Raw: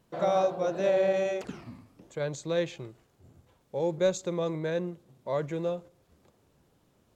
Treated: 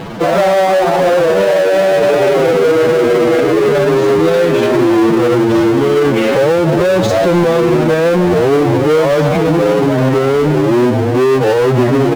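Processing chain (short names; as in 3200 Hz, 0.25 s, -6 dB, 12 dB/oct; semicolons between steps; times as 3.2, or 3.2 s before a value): Schroeder reverb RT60 1.6 s, combs from 25 ms, DRR 17.5 dB; in parallel at -3 dB: soft clip -30 dBFS, distortion -8 dB; on the sum: air absorption 290 m; echoes that change speed 0.447 s, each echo -3 st, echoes 3; on a send: frequency-shifting echo 0.171 s, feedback 41%, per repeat +110 Hz, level -15 dB; on the sum: power-law curve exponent 0.5; low shelf 110 Hz -9.5 dB; time stretch by phase-locked vocoder 1.7×; maximiser +18.5 dB; gain -3 dB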